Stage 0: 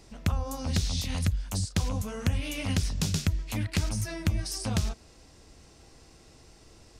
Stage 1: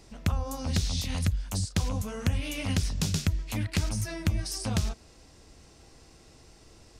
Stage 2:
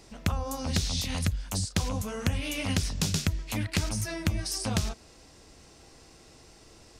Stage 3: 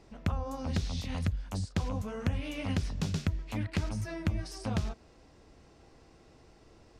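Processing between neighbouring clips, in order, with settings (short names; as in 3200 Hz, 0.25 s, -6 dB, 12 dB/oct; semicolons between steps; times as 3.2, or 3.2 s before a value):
nothing audible
low shelf 160 Hz -5.5 dB; gain +2.5 dB
LPF 1600 Hz 6 dB/oct; gain -2.5 dB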